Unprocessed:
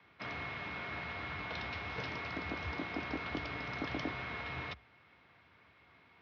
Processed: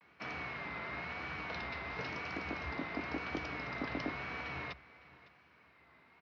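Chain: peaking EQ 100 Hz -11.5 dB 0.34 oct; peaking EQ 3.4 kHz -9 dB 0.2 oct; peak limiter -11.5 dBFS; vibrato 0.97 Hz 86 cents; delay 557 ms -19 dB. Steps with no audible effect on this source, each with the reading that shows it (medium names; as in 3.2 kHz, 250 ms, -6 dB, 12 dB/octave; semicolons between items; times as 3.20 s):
peak limiter -11.5 dBFS: peak at its input -24.5 dBFS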